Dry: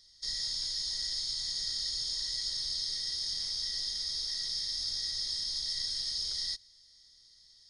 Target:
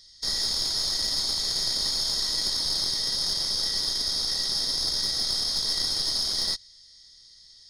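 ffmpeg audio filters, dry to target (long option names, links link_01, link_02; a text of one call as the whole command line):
ffmpeg -i in.wav -af "acontrast=75,aeval=exprs='(tanh(8.91*val(0)+0.6)-tanh(0.6))/8.91':channel_layout=same,volume=4dB" out.wav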